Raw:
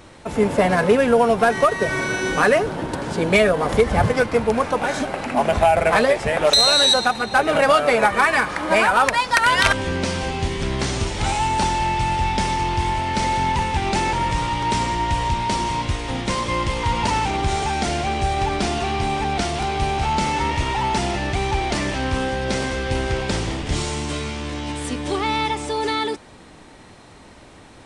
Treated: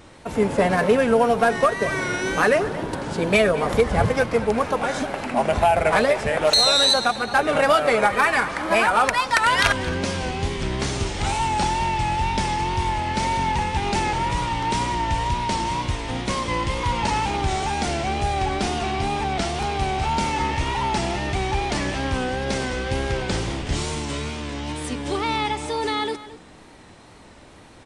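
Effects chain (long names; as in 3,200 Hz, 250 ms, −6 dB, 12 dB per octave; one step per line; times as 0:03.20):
tape wow and flutter 63 cents
slap from a distant wall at 38 metres, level −15 dB
level −2 dB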